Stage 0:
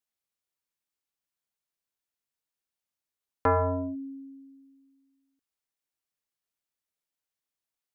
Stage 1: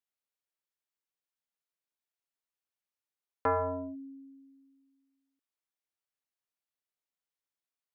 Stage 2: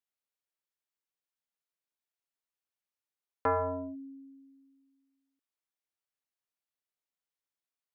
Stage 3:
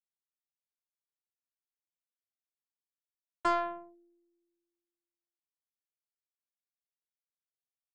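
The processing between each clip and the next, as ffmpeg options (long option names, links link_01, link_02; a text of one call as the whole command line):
ffmpeg -i in.wav -af "bass=frequency=250:gain=-7,treble=frequency=4000:gain=-4,volume=-4dB" out.wav
ffmpeg -i in.wav -af anull out.wav
ffmpeg -i in.wav -af "aeval=exprs='0.106*(cos(1*acos(clip(val(0)/0.106,-1,1)))-cos(1*PI/2))+0.00473*(cos(2*acos(clip(val(0)/0.106,-1,1)))-cos(2*PI/2))+0.00335*(cos(3*acos(clip(val(0)/0.106,-1,1)))-cos(3*PI/2))+0.000841*(cos(5*acos(clip(val(0)/0.106,-1,1)))-cos(5*PI/2))+0.0133*(cos(7*acos(clip(val(0)/0.106,-1,1)))-cos(7*PI/2))':channel_layout=same,afftfilt=real='hypot(re,im)*cos(PI*b)':imag='0':win_size=512:overlap=0.75,volume=2.5dB" out.wav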